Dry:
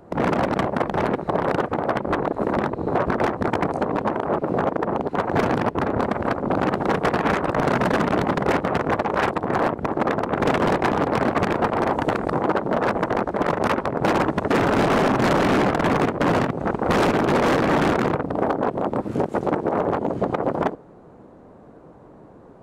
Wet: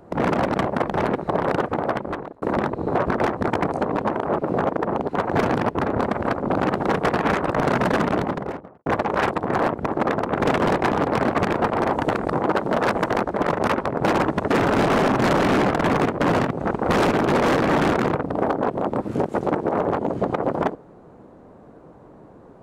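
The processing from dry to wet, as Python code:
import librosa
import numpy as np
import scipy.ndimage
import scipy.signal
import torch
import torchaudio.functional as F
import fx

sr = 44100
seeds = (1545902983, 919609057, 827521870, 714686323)

y = fx.studio_fade_out(x, sr, start_s=7.99, length_s=0.87)
y = fx.high_shelf(y, sr, hz=2700.0, db=7.5, at=(12.54, 13.23))
y = fx.edit(y, sr, fx.fade_out_span(start_s=1.85, length_s=0.57), tone=tone)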